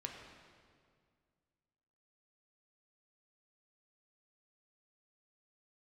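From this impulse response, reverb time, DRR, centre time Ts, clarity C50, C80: 2.0 s, 1.0 dB, 61 ms, 3.5 dB, 4.5 dB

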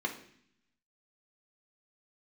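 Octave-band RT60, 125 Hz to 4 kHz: 1.0 s, 1.0 s, 0.65 s, 0.60 s, 0.75 s, 0.80 s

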